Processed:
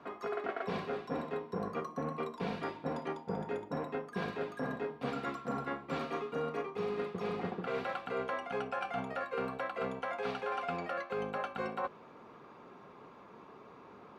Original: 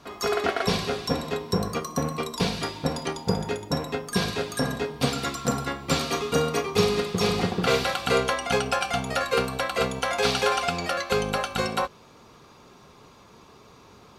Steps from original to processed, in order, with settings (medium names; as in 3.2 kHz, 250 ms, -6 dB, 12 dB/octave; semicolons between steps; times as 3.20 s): three-band isolator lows -16 dB, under 160 Hz, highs -22 dB, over 2.4 kHz; reverse; compression 6:1, threshold -33 dBFS, peak gain reduction 15 dB; reverse; trim -1 dB